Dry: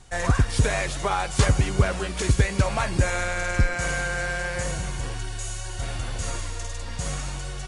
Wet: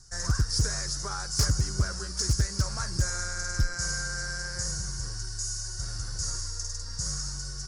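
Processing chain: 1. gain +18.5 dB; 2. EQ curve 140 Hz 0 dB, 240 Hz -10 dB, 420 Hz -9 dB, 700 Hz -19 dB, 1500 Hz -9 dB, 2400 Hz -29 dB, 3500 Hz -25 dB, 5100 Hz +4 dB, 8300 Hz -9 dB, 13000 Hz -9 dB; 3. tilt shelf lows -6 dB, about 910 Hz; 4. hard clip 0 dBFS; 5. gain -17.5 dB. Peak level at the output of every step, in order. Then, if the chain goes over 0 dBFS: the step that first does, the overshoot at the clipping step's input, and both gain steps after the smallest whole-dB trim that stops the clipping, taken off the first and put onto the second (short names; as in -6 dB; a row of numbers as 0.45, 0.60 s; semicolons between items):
+10.5, +10.0, +8.5, 0.0, -17.5 dBFS; step 1, 8.5 dB; step 1 +9.5 dB, step 5 -8.5 dB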